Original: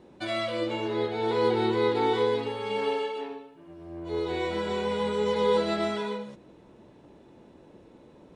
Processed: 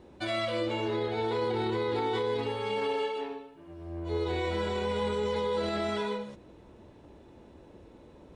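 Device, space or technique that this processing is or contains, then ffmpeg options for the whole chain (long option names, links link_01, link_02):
car stereo with a boomy subwoofer: -af "lowshelf=frequency=110:width_type=q:width=1.5:gain=6.5,alimiter=limit=-22.5dB:level=0:latency=1:release=19"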